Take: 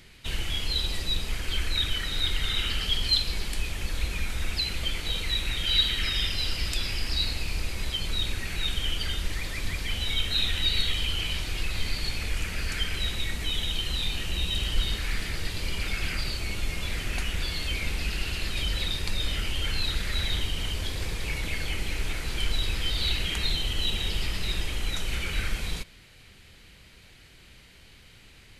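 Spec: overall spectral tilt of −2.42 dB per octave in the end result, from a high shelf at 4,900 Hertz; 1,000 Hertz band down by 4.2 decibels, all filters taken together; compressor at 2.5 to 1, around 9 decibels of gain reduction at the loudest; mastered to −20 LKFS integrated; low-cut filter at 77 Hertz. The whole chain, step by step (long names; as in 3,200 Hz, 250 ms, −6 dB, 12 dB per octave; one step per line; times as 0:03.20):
high-pass filter 77 Hz
parametric band 1,000 Hz −6.5 dB
high-shelf EQ 4,900 Hz +7.5 dB
downward compressor 2.5 to 1, threshold −30 dBFS
level +11 dB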